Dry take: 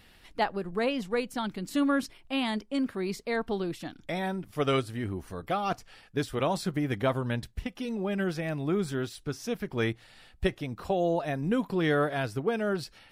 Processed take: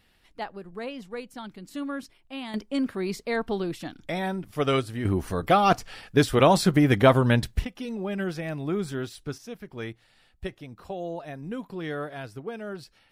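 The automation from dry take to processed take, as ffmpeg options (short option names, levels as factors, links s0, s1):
-af "asetnsamples=n=441:p=0,asendcmd='2.54 volume volume 2.5dB;5.05 volume volume 10dB;7.65 volume volume 0dB;9.38 volume volume -7dB',volume=0.447"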